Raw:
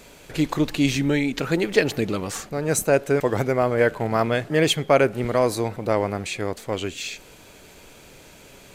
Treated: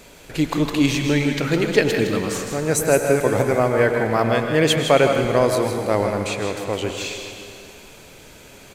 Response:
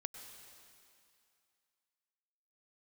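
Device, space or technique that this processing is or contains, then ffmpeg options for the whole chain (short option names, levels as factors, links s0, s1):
cave: -filter_complex "[0:a]aecho=1:1:160:0.376[s0];[1:a]atrim=start_sample=2205[s1];[s0][s1]afir=irnorm=-1:irlink=0,volume=1.78"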